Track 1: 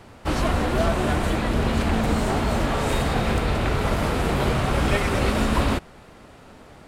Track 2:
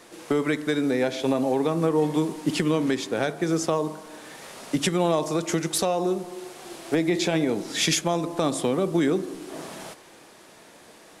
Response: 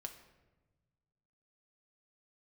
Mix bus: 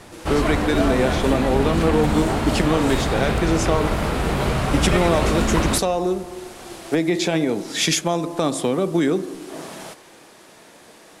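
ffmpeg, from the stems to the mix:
-filter_complex "[0:a]volume=-2dB,asplit=2[a][b];[b]volume=-4dB[c];[1:a]volume=3dB[d];[2:a]atrim=start_sample=2205[e];[c][e]afir=irnorm=-1:irlink=0[f];[a][d][f]amix=inputs=3:normalize=0"

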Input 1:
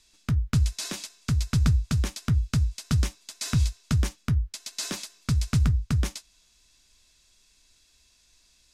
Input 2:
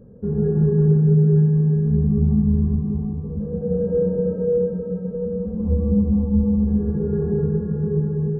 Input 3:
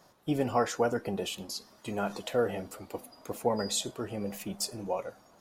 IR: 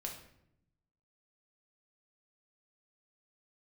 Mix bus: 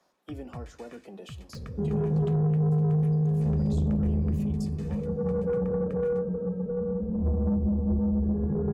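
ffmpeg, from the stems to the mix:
-filter_complex "[0:a]highpass=f=130:p=1,highshelf=f=3.1k:t=q:w=1.5:g=-12.5,aecho=1:1:1.7:0.59,volume=-17.5dB,asplit=2[a][b];[b]volume=-14.5dB[c];[1:a]acompressor=mode=upward:threshold=-34dB:ratio=2.5,adelay=1550,volume=-3dB[d];[2:a]highpass=f=190:w=0.5412,highpass=f=190:w=1.3066,highshelf=f=11k:g=-9.5,acrossover=split=390[e][f];[f]acompressor=threshold=-37dB:ratio=10[g];[e][g]amix=inputs=2:normalize=0,volume=-10dB,asplit=2[h][i];[i]volume=-12dB[j];[3:a]atrim=start_sample=2205[k];[c][j]amix=inputs=2:normalize=0[l];[l][k]afir=irnorm=-1:irlink=0[m];[a][d][h][m]amix=inputs=4:normalize=0,acrossover=split=160[n][o];[o]acompressor=threshold=-24dB:ratio=3[p];[n][p]amix=inputs=2:normalize=0,asoftclip=type=tanh:threshold=-20.5dB"

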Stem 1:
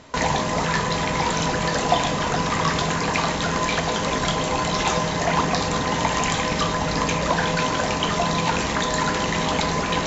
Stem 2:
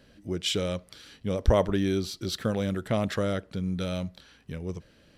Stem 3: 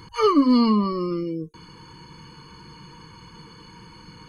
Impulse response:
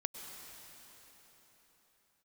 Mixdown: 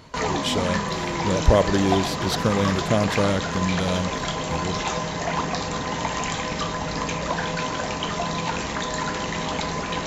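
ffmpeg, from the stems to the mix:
-filter_complex "[0:a]volume=-4.5dB[a];[1:a]dynaudnorm=f=110:g=11:m=7dB,volume=-2.5dB,asplit=2[b][c];[c]volume=-14dB[d];[2:a]acompressor=threshold=-23dB:ratio=6,volume=-5.5dB[e];[3:a]atrim=start_sample=2205[f];[d][f]afir=irnorm=-1:irlink=0[g];[a][b][e][g]amix=inputs=4:normalize=0"

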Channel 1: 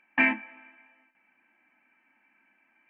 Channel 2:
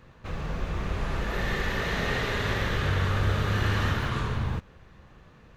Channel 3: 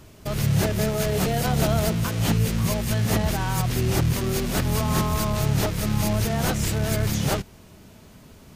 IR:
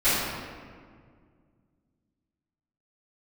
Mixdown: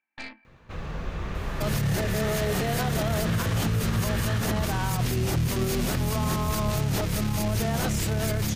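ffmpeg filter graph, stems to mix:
-filter_complex "[0:a]aeval=exprs='0.355*(cos(1*acos(clip(val(0)/0.355,-1,1)))-cos(1*PI/2))+0.126*(cos(4*acos(clip(val(0)/0.355,-1,1)))-cos(4*PI/2))':c=same,volume=-18.5dB[a];[1:a]adelay=450,volume=-1.5dB[b];[2:a]adelay=1350,volume=2dB[c];[a][b][c]amix=inputs=3:normalize=0,alimiter=limit=-17.5dB:level=0:latency=1:release=48"

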